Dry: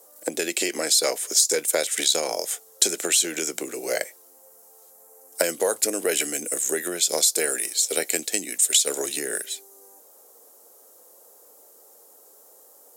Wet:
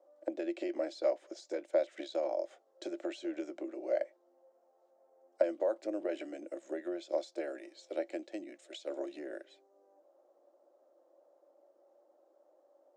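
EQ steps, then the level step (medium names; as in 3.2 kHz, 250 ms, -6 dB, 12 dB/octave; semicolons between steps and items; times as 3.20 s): two resonant band-passes 440 Hz, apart 0.76 oct; distance through air 170 m; tilt EQ +3 dB/octave; +2.5 dB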